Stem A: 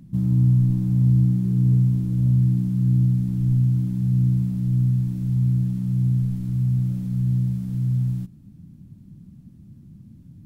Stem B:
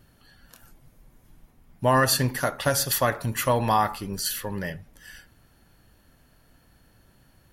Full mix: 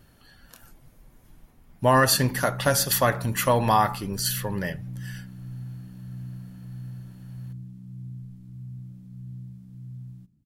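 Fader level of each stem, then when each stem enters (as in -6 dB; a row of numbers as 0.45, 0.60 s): -18.0, +1.5 dB; 2.00, 0.00 s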